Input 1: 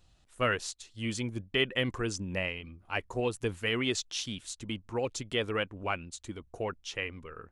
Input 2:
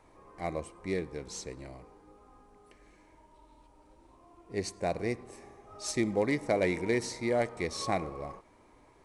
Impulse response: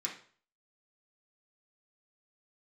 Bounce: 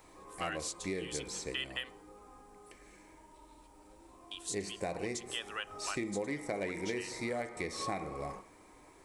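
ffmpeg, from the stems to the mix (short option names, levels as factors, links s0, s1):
-filter_complex "[0:a]highpass=1100,bandreject=f=2200:w=5,volume=0.794,asplit=3[s0][s1][s2];[s0]atrim=end=1.93,asetpts=PTS-STARTPTS,afade=t=out:st=1.926:d=0.004:c=hsin[s3];[s1]atrim=start=1.93:end=4.31,asetpts=PTS-STARTPTS,volume=0[s4];[s2]atrim=start=4.31,asetpts=PTS-STARTPTS,afade=t=in:d=0.004:c=hsin[s5];[s3][s4][s5]concat=n=3:v=0:a=1,asplit=2[s6][s7];[s7]volume=0.119[s8];[1:a]acrossover=split=3300[s9][s10];[s10]acompressor=threshold=0.00398:ratio=4:attack=1:release=60[s11];[s9][s11]amix=inputs=2:normalize=0,volume=1.06,asplit=2[s12][s13];[s13]volume=0.501[s14];[2:a]atrim=start_sample=2205[s15];[s8][s14]amix=inputs=2:normalize=0[s16];[s16][s15]afir=irnorm=-1:irlink=0[s17];[s6][s12][s17]amix=inputs=3:normalize=0,highshelf=f=8300:g=10.5,acompressor=threshold=0.02:ratio=5"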